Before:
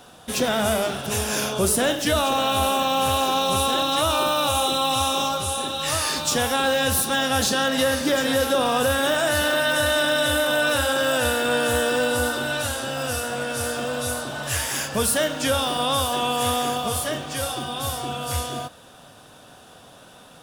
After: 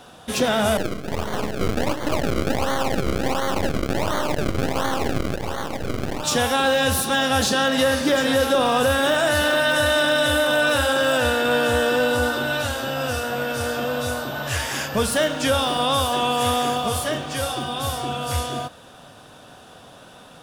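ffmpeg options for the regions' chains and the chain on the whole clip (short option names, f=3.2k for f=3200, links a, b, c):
-filter_complex "[0:a]asettb=1/sr,asplit=3[a][b][c];[a]atrim=end=0.774[d];[b]atrim=start=0.77:end=6.24,asetpts=PTS-STARTPTS,afade=t=in:d=0.004:c=qsin,afade=t=out:st=5.466:d=0.004:c=qsin,acrusher=samples=34:mix=1:aa=0.000001:lfo=1:lforange=34:lforate=1.4,aeval=exprs='max(val(0),0)':c=same[e];[c]atrim=start=6.236[f];[d][e]acrossfade=d=0.004:c1=hsin:c2=qsin[g];[g][f]acrossfade=d=0.004:c1=qsin:c2=hsin,asettb=1/sr,asplit=3[h][i][j];[h]atrim=end=11.174[k];[i]atrim=start=11.17:end=15.12,asetpts=PTS-STARTPTS,afade=t=in:d=0.004:c=qsin,afade=t=out:st=3.946:d=0.004:c=qsin,adynamicsmooth=sensitivity=5.5:basefreq=6.4k,aeval=exprs='val(0)+0.00891*sin(2*PI*14000*n/s)':c=same[l];[j]atrim=start=15.116[m];[k][l]acrossfade=d=0.004:c1=hsin:c2=qsin[n];[n][m]acrossfade=d=0.004:c1=qsin:c2=hsin,highshelf=f=7k:g=-6.5,acontrast=55,volume=-3.5dB"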